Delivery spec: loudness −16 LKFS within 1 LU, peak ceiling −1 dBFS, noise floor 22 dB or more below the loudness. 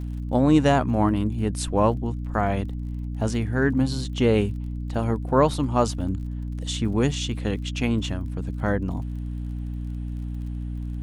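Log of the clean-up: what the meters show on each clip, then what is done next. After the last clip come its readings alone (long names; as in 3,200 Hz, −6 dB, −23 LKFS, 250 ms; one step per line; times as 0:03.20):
crackle rate 36 per second; mains hum 60 Hz; hum harmonics up to 300 Hz; level of the hum −28 dBFS; integrated loudness −25.0 LKFS; sample peak −5.0 dBFS; target loudness −16.0 LKFS
→ click removal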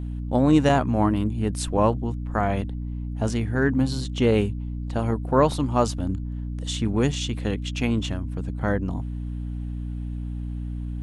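crackle rate 0 per second; mains hum 60 Hz; hum harmonics up to 300 Hz; level of the hum −28 dBFS
→ hum removal 60 Hz, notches 5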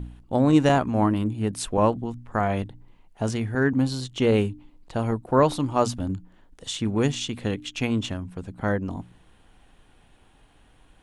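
mains hum none found; integrated loudness −25.0 LKFS; sample peak −5.5 dBFS; target loudness −16.0 LKFS
→ level +9 dB
brickwall limiter −1 dBFS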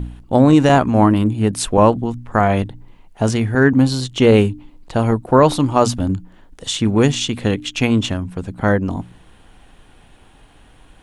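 integrated loudness −16.5 LKFS; sample peak −1.0 dBFS; background noise floor −48 dBFS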